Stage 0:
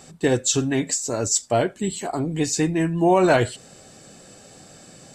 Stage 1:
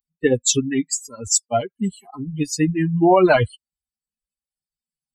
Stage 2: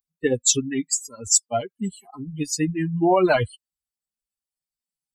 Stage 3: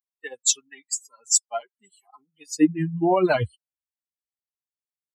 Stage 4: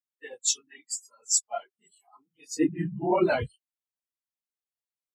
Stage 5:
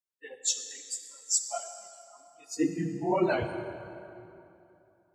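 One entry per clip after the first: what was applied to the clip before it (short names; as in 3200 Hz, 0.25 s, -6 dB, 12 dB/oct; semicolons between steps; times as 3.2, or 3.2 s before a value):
per-bin expansion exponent 3; gain +7 dB
tone controls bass -1 dB, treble +5 dB; gain -4 dB
high-pass sweep 940 Hz -> 75 Hz, 2.38–2.94; upward expander 1.5:1, over -38 dBFS
phase scrambler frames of 50 ms; gain -4.5 dB
reverb RT60 2.9 s, pre-delay 37 ms, DRR 7 dB; gain -3 dB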